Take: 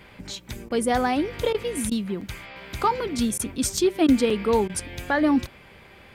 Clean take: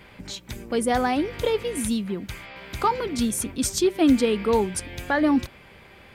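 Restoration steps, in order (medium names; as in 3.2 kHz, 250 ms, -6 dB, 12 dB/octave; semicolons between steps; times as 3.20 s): interpolate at 2.21/3.77/4.30 s, 4.1 ms; interpolate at 0.69/1.53/1.90/3.38/4.07/4.68 s, 13 ms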